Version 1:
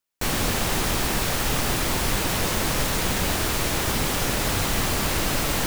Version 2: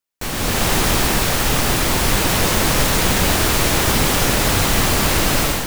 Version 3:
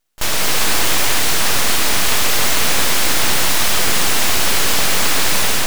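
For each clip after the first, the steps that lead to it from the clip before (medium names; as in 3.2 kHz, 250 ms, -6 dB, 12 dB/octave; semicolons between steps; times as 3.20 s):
level rider gain up to 11.5 dB; trim -1.5 dB
overdrive pedal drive 25 dB, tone 4.6 kHz, clips at -3 dBFS; pre-echo 33 ms -19.5 dB; full-wave rectifier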